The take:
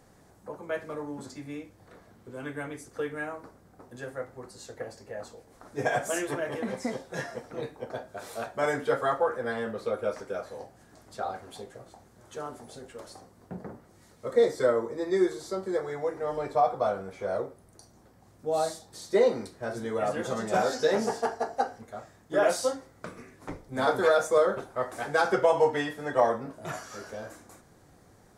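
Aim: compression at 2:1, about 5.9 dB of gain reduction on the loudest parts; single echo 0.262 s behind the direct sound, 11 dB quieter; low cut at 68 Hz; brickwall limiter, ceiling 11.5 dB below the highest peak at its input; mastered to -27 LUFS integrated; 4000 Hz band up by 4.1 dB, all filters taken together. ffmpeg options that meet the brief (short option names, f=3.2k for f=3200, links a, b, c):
-af "highpass=68,equalizer=f=4k:t=o:g=5,acompressor=threshold=-28dB:ratio=2,alimiter=level_in=3.5dB:limit=-24dB:level=0:latency=1,volume=-3.5dB,aecho=1:1:262:0.282,volume=11dB"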